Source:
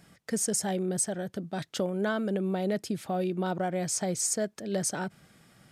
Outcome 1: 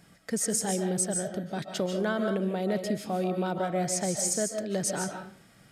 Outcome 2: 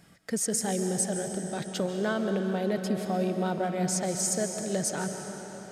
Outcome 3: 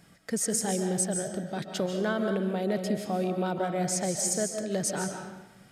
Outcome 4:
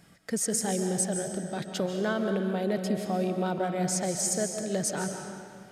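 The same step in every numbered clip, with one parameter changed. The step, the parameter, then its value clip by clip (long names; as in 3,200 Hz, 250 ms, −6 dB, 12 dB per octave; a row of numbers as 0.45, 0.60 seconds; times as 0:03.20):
comb and all-pass reverb, RT60: 0.41, 4.5, 0.99, 2.1 seconds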